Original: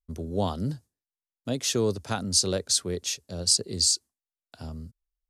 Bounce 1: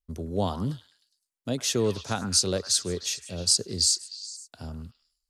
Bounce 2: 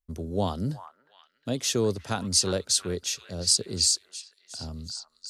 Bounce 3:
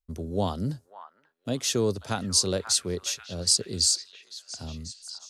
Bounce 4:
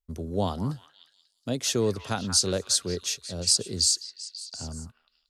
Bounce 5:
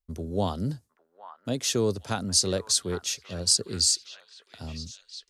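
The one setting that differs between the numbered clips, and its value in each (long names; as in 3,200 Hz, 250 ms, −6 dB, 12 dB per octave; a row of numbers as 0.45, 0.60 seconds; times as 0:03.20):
echo through a band-pass that steps, delay time: 103, 359, 538, 180, 808 milliseconds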